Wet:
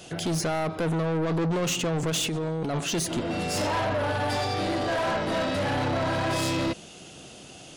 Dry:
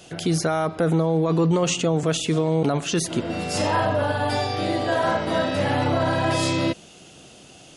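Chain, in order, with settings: 2.10–2.74 s: compressor with a negative ratio -26 dBFS, ratio -1; saturation -25 dBFS, distortion -9 dB; trim +1.5 dB

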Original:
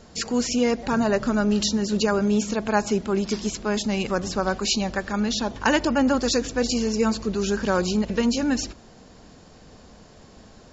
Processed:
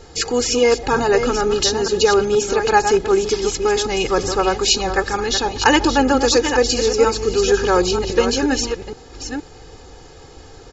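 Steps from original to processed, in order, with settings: chunks repeated in reverse 470 ms, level -8 dB; comb 2.4 ms, depth 83%; trim +5 dB

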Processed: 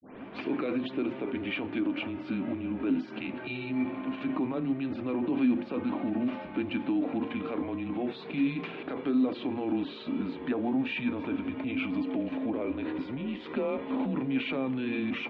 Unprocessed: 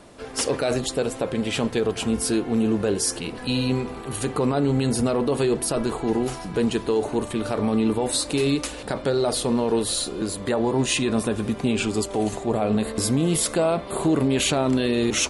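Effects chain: tape start-up on the opening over 0.44 s; hum notches 60/120/180/240/300/360/420/480 Hz; peak limiter -20.5 dBFS, peak gain reduction 10.5 dB; small resonant body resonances 390/2500 Hz, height 11 dB, ringing for 45 ms; mistuned SSB -130 Hz 350–3300 Hz; trim -3.5 dB

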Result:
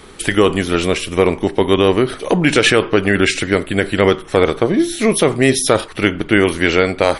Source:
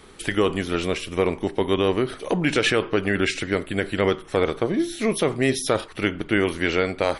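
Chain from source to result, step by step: dynamic bell 9.2 kHz, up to +4 dB, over -47 dBFS, Q 1.4; trim +8 dB

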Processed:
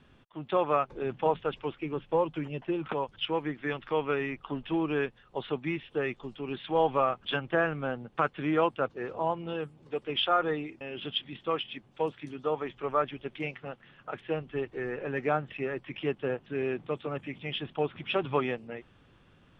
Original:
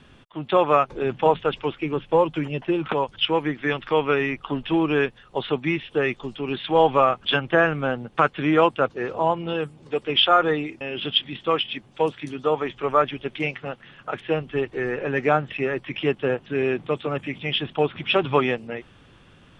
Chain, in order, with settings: treble shelf 3.9 kHz -7.5 dB; trim -8 dB

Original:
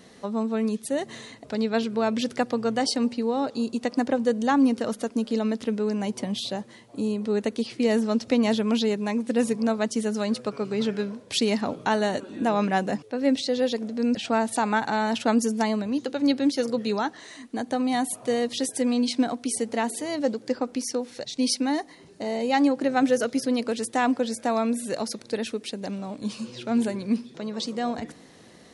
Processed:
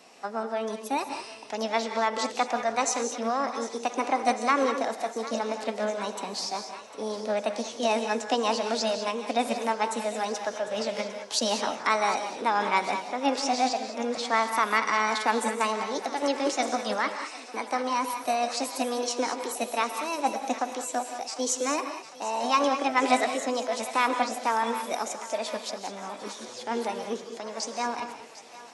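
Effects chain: three-band isolator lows -19 dB, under 300 Hz, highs -14 dB, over 7.3 kHz; formant shift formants +5 st; on a send: thinning echo 752 ms, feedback 73%, high-pass 680 Hz, level -15.5 dB; on the sum: gated-style reverb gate 230 ms rising, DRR 7 dB

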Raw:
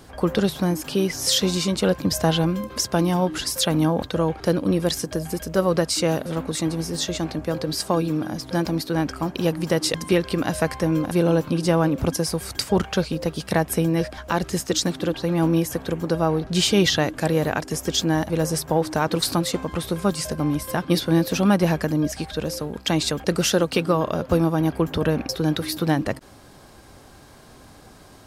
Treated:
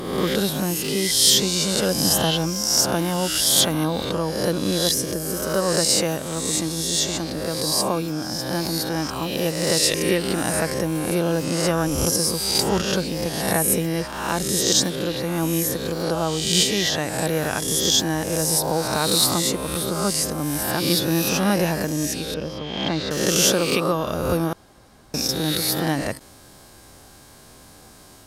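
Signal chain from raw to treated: reverse spectral sustain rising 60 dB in 1.06 s; peaking EQ 13 kHz +9 dB 2.2 oct; 16.62–17.19 s: compression, threshold -14 dBFS, peak gain reduction 5 dB; 22.34–23.11 s: distance through air 290 m; 24.53–25.14 s: room tone; trim -4 dB

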